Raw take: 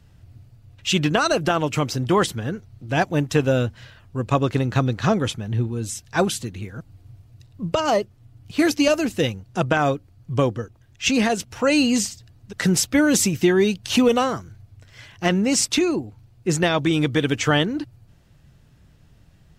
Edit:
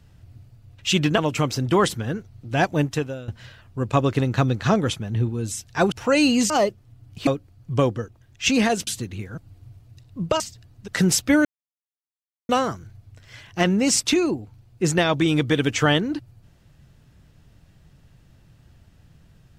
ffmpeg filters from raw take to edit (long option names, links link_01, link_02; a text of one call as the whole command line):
ffmpeg -i in.wav -filter_complex "[0:a]asplit=10[link_01][link_02][link_03][link_04][link_05][link_06][link_07][link_08][link_09][link_10];[link_01]atrim=end=1.182[link_11];[link_02]atrim=start=1.558:end=3.66,asetpts=PTS-STARTPTS,afade=type=out:start_time=1.672:duration=0.43:curve=qua:silence=0.125893[link_12];[link_03]atrim=start=3.66:end=6.302,asetpts=PTS-STARTPTS,afade=type=in:duration=0.004:curve=hsin:silence=0.125893[link_13];[link_04]atrim=start=11.468:end=12.052[link_14];[link_05]atrim=start=7.828:end=8.602[link_15];[link_06]atrim=start=9.868:end=11.472[link_16];[link_07]atrim=start=6.298:end=7.832[link_17];[link_08]atrim=start=12.048:end=13.1,asetpts=PTS-STARTPTS,afade=type=out:start_time=1.048:duration=0.004:curve=hsin[link_18];[link_09]atrim=start=13.1:end=14.14,asetpts=PTS-STARTPTS,volume=0[link_19];[link_10]atrim=start=14.14,asetpts=PTS-STARTPTS,afade=type=in:duration=0.004:curve=hsin[link_20];[link_12][link_13]concat=n=2:v=0:a=1[link_21];[link_11][link_21]acrossfade=duration=0.004:curve1=hsin:curve2=hsin[link_22];[link_22][link_14]acrossfade=duration=0.004:curve1=hsin:curve2=hsin[link_23];[link_23][link_15]acrossfade=duration=0.004:curve1=hsin:curve2=hsin[link_24];[link_24][link_16]acrossfade=duration=0.004:curve1=hsin:curve2=hsin[link_25];[link_25][link_17]acrossfade=duration=0.004:curve1=hsin:curve2=hsin[link_26];[link_18][link_19][link_20]concat=n=3:v=0:a=1[link_27];[link_26][link_27]acrossfade=duration=0.004:curve1=hsin:curve2=hsin" out.wav